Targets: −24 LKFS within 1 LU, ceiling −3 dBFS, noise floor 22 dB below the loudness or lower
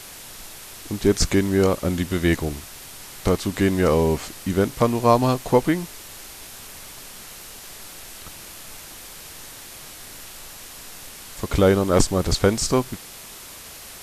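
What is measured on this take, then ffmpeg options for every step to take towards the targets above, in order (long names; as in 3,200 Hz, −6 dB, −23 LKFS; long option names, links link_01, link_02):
background noise floor −41 dBFS; target noise floor −43 dBFS; integrated loudness −21.0 LKFS; sample peak −2.0 dBFS; target loudness −24.0 LKFS
→ -af "afftdn=noise_reduction=6:noise_floor=-41"
-af "volume=-3dB"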